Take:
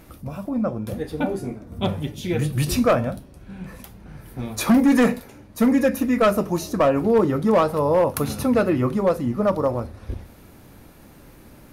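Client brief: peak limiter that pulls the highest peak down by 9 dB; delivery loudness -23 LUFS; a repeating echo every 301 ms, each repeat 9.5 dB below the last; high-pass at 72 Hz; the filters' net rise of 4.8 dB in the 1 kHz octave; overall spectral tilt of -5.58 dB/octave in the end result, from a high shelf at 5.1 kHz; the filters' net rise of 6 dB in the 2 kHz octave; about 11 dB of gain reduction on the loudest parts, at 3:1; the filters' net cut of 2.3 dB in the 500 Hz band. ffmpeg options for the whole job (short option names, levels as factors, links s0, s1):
-af "highpass=72,equalizer=f=500:t=o:g=-4.5,equalizer=f=1000:t=o:g=5.5,equalizer=f=2000:t=o:g=6.5,highshelf=f=5100:g=-3.5,acompressor=threshold=0.0447:ratio=3,alimiter=limit=0.0708:level=0:latency=1,aecho=1:1:301|602|903|1204:0.335|0.111|0.0365|0.012,volume=2.99"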